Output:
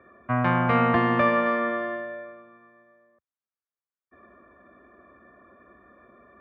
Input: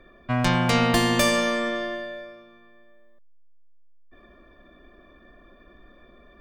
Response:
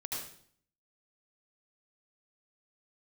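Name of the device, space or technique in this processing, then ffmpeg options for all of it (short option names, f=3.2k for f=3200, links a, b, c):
bass cabinet: -filter_complex "[0:a]highpass=f=79:w=0.5412,highpass=f=79:w=1.3066,equalizer=f=160:t=q:w=4:g=-6,equalizer=f=310:t=q:w=4:g=-3,equalizer=f=1.2k:t=q:w=4:g=6,lowpass=f=2.1k:w=0.5412,lowpass=f=2.1k:w=1.3066,asettb=1/sr,asplit=3[a][b][c];[a]atrim=end=1.464[d];[b]atrim=start=1.46:end=2.01,asetpts=PTS-STARTPTS,afade=t=in:d=0.004:c=qsin,afade=t=out:st=0.546:d=0.004:c=qsin,equalizer=f=5.3k:t=o:w=0.99:g=6[e];[c]atrim=start=2.006[f];[d][e]acrossfade=d=0.004:c1=hsin:c2=qsin[g];[g][f]acrossfade=d=0.004:c1=qsin:c2=hsin"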